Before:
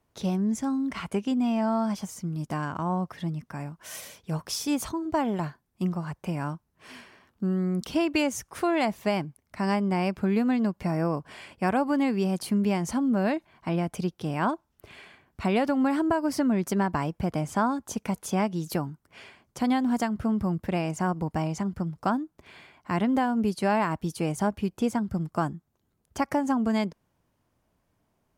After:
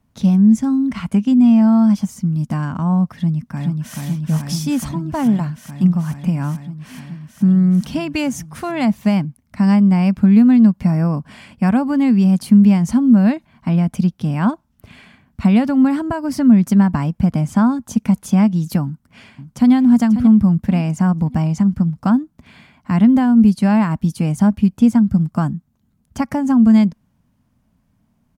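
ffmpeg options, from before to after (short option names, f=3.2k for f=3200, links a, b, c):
-filter_complex "[0:a]asplit=2[a][b];[b]afade=t=in:st=3.13:d=0.01,afade=t=out:st=3.98:d=0.01,aecho=0:1:430|860|1290|1720|2150|2580|3010|3440|3870|4300|4730|5160:0.749894|0.63741|0.541799|0.460529|0.391449|0.332732|0.282822|0.240399|0.204339|0.173688|0.147635|0.12549[c];[a][c]amix=inputs=2:normalize=0,asplit=2[d][e];[e]afade=t=in:st=18.84:d=0.01,afade=t=out:st=19.73:d=0.01,aecho=0:1:540|1080|1620|2160:0.316228|0.11068|0.0387379|0.0135583[f];[d][f]amix=inputs=2:normalize=0,lowshelf=f=290:t=q:w=3:g=7,volume=3.5dB"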